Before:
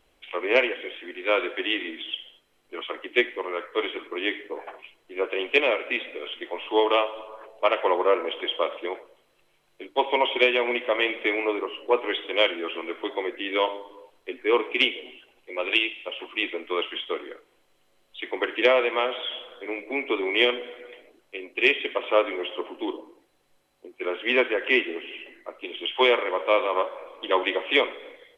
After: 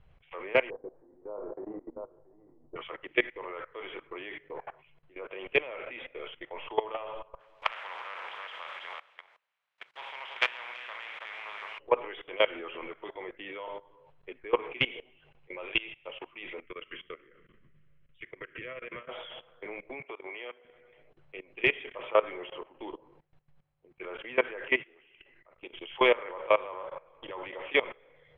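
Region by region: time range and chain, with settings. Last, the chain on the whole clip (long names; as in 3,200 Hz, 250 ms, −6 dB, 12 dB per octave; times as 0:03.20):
0:00.70–0:02.76: Butterworth low-pass 980 Hz + double-tracking delay 29 ms −5.5 dB + single-tap delay 678 ms −14.5 dB
0:07.39–0:11.78: compressing power law on the bin magnitudes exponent 0.45 + high-pass filter 1,000 Hz + single-tap delay 329 ms −8.5 dB
0:16.62–0:19.09: echo with shifted repeats 130 ms, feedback 56%, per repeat −33 Hz, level −20.5 dB + downward compressor 16 to 1, threshold −29 dBFS + phaser with its sweep stopped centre 2,000 Hz, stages 4
0:20.00–0:20.65: high-pass filter 160 Hz 6 dB per octave + downward compressor 3 to 1, threshold −34 dBFS + bass and treble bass −13 dB, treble −7 dB
0:24.80–0:25.62: tilt shelving filter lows −3.5 dB, about 1,100 Hz + output level in coarse steps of 10 dB + linearly interpolated sample-rate reduction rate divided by 2×
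0:27.12–0:27.55: high-frequency loss of the air 51 metres + downward compressor 12 to 1, threshold −28 dBFS
whole clip: low shelf with overshoot 200 Hz +11.5 dB, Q 3; output level in coarse steps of 20 dB; low-pass filter 2,200 Hz 12 dB per octave; level +1 dB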